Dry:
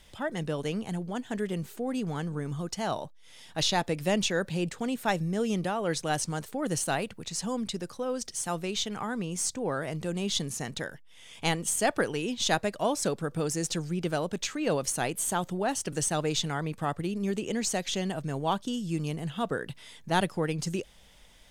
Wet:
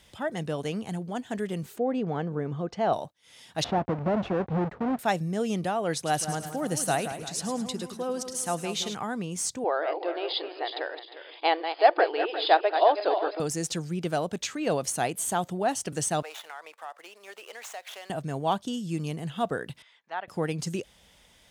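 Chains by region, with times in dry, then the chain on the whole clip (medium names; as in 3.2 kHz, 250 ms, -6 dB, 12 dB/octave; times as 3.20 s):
1.78–2.93 s: low-pass 2.9 kHz + peaking EQ 480 Hz +6.5 dB 1.2 oct
3.64–4.99 s: square wave that keeps the level + low-pass 1.2 kHz + compression 3:1, threshold -24 dBFS
5.95–8.95 s: peaking EQ 11 kHz +7 dB 0.33 oct + two-band feedback delay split 2 kHz, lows 171 ms, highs 106 ms, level -9.5 dB
9.64–13.40 s: backward echo that repeats 177 ms, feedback 56%, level -8 dB + brick-wall FIR band-pass 300–5100 Hz + peaking EQ 800 Hz +6 dB 1.3 oct
16.22–18.10 s: median filter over 9 samples + high-pass 640 Hz 24 dB/octave + compression 4:1, threshold -37 dBFS
19.82–20.28 s: high-pass 1.1 kHz + tape spacing loss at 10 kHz 31 dB + low-pass that closes with the level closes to 2.3 kHz, closed at -34 dBFS
whole clip: high-pass 58 Hz; dynamic bell 710 Hz, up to +6 dB, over -46 dBFS, Q 4.4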